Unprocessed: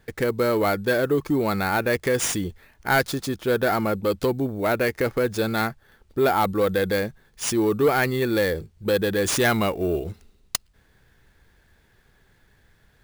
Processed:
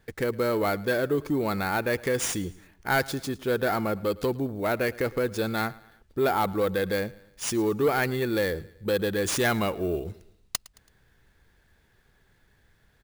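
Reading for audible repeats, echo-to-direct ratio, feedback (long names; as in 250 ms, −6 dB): 2, −20.5 dB, 45%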